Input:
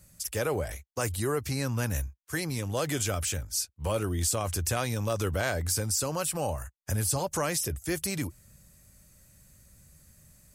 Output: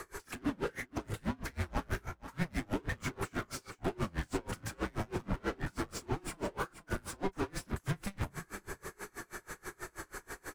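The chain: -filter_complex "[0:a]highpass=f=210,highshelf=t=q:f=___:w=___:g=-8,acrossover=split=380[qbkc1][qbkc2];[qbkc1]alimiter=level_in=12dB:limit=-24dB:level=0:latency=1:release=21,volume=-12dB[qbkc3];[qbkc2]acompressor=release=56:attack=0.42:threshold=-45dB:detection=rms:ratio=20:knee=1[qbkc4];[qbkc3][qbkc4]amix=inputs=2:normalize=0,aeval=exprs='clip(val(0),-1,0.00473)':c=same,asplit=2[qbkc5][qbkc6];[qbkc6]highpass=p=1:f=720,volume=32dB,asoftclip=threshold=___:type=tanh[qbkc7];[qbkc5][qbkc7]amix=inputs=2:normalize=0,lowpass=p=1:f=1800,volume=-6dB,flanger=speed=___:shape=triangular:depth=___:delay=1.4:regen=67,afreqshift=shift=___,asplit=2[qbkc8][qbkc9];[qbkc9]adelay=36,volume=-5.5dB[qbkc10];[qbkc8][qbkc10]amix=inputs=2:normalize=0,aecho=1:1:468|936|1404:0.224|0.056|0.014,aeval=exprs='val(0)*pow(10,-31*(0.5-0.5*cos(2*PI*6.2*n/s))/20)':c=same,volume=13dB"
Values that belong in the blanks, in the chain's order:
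2500, 1.5, -32.5dB, 0.34, 3.1, -190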